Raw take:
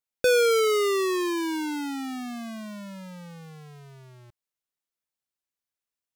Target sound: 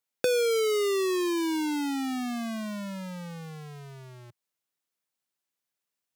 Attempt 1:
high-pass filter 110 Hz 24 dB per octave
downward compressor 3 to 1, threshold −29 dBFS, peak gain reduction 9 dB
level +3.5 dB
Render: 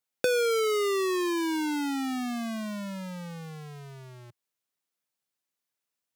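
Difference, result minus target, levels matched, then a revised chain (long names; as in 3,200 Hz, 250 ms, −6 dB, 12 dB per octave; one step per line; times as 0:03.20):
1,000 Hz band +2.5 dB
high-pass filter 110 Hz 24 dB per octave
dynamic equaliser 1,400 Hz, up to −7 dB, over −42 dBFS, Q 1.7
downward compressor 3 to 1, threshold −29 dBFS, peak gain reduction 8 dB
level +3.5 dB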